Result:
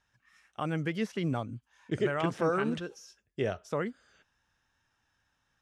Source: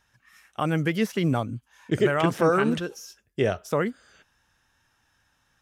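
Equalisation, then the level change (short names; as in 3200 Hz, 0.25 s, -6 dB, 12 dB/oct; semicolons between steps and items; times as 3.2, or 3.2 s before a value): Bessel low-pass 7700 Hz, order 4; -7.5 dB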